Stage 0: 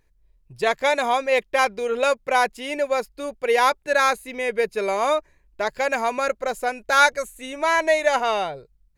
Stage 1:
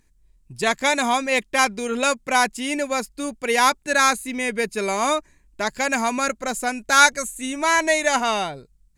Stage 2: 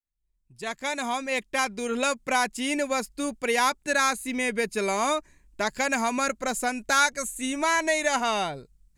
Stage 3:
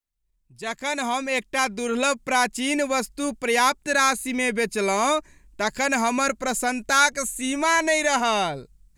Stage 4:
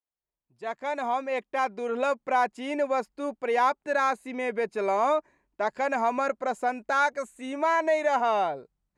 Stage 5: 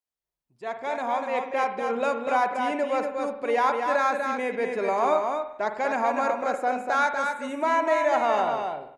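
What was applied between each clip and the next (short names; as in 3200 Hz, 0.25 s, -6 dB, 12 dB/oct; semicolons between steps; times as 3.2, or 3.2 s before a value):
graphic EQ 250/500/8000 Hz +9/-8/+11 dB; gain +2 dB
opening faded in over 2.38 s; compressor 2:1, threshold -22 dBFS, peak gain reduction 7.5 dB; gain -1 dB
transient shaper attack -3 dB, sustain +1 dB; gain +4 dB
band-pass 690 Hz, Q 1.1
echo 0.243 s -5 dB; reverb RT60 0.75 s, pre-delay 47 ms, DRR 8 dB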